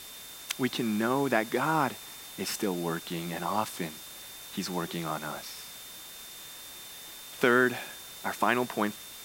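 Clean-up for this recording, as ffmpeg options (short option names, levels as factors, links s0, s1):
-af "adeclick=t=4,bandreject=f=3600:w=30,afftdn=nr=30:nf=-45"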